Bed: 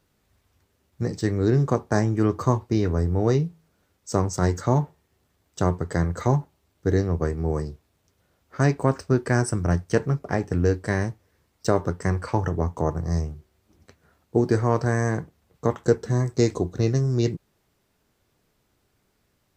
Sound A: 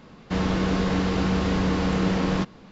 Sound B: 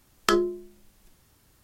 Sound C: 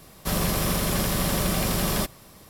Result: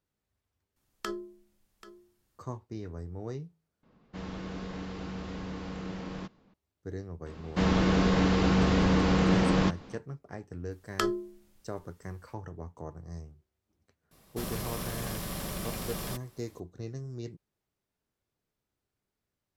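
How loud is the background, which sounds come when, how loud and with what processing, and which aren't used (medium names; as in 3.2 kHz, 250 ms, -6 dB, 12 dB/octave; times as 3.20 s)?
bed -17.5 dB
0.76 s: replace with B -14.5 dB + delay 785 ms -16 dB
3.83 s: replace with A -15.5 dB + tape noise reduction on one side only decoder only
7.26 s: add A -1 dB
10.71 s: add B -7 dB
14.11 s: add C -12 dB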